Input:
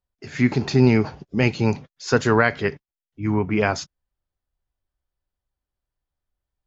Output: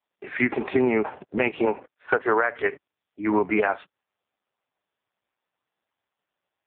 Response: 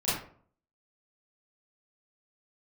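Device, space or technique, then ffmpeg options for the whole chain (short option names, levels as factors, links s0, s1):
voicemail: -filter_complex "[0:a]asettb=1/sr,asplit=3[s0][s1][s2];[s0]atrim=end=1.654[s3];[s1]atrim=start=1.65:end=2.56,asetpts=PTS-STARTPTS,afade=t=in:d=0.004:c=qsin,afade=t=out:st=0.906:d=0.004:c=qsin,acrossover=split=180 2300:gain=0.0891 1 0.126[s4][s5][s6];[s4][s5][s6]amix=inputs=3:normalize=0[s7];[s2]atrim=start=2.556[s8];[s3][s7]acrossfade=d=0.004:c1=hsin:c2=qsin[s9];[s9][s8]acrossfade=d=0.004:c1=qsin:c2=hsin,highpass=420,lowpass=2700,acompressor=threshold=0.0562:ratio=12,volume=2.82" -ar 8000 -c:a libopencore_amrnb -b:a 4750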